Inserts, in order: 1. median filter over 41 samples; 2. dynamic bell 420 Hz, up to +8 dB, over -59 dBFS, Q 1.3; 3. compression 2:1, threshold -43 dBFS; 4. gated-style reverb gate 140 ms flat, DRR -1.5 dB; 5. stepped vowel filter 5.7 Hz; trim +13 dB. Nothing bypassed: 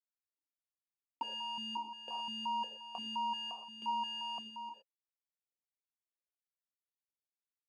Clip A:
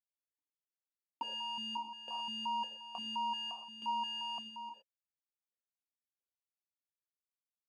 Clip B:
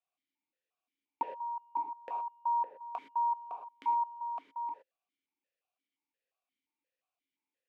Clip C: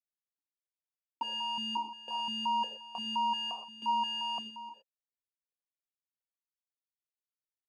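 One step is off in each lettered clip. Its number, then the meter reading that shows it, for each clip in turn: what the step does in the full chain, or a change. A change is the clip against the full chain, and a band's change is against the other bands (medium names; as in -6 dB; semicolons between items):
2, 500 Hz band -3.0 dB; 1, loudness change +3.5 LU; 3, mean gain reduction 4.0 dB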